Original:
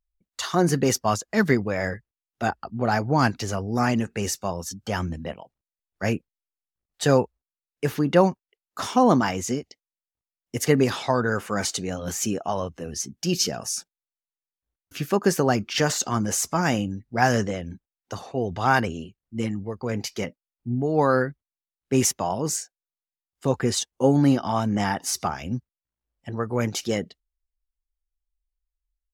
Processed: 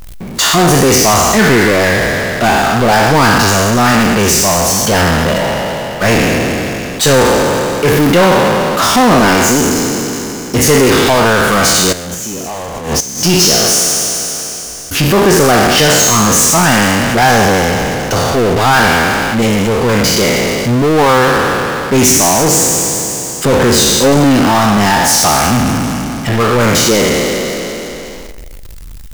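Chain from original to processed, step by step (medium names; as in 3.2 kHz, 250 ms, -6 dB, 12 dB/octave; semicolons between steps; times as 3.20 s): spectral sustain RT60 1.33 s; 11.92–13.24 s: inverted gate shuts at -17 dBFS, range -34 dB; power-law waveshaper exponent 0.35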